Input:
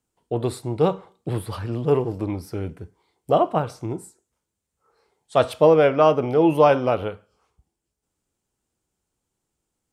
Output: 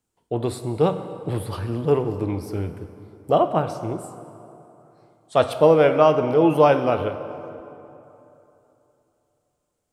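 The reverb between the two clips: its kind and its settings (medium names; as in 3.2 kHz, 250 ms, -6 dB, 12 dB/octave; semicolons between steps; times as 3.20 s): plate-style reverb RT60 3.1 s, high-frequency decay 0.6×, DRR 9.5 dB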